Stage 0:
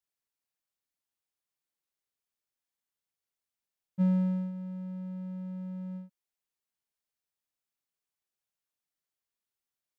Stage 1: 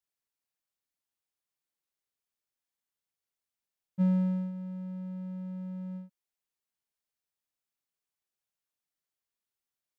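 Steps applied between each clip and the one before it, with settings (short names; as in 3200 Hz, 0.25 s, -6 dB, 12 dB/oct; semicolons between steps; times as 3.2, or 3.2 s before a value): nothing audible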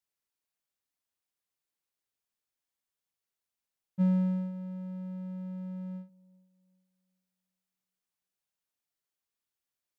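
band-limited delay 0.389 s, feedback 33%, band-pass 400 Hz, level -22 dB; ending taper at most 220 dB/s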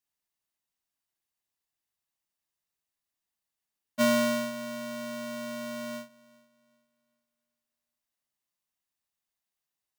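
notch comb 940 Hz; polarity switched at an audio rate 420 Hz; gain +2.5 dB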